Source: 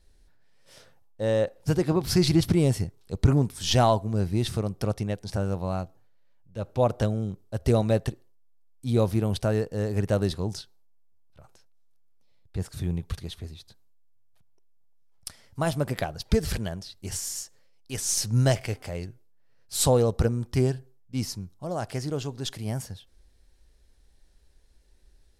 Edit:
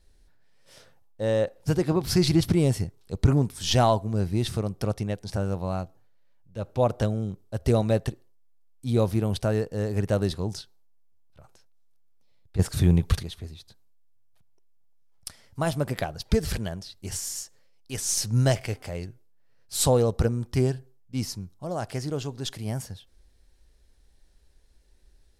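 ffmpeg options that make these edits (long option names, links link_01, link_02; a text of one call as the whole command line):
ffmpeg -i in.wav -filter_complex "[0:a]asplit=3[link_01][link_02][link_03];[link_01]atrim=end=12.592[link_04];[link_02]atrim=start=12.588:end=13.232,asetpts=PTS-STARTPTS,volume=9.5dB[link_05];[link_03]atrim=start=13.228[link_06];[link_04][link_05]acrossfade=duration=0.004:curve1=hsin:curve2=hsin[link_07];[link_07][link_06]acrossfade=duration=0.004:curve1=hsin:curve2=hsin" out.wav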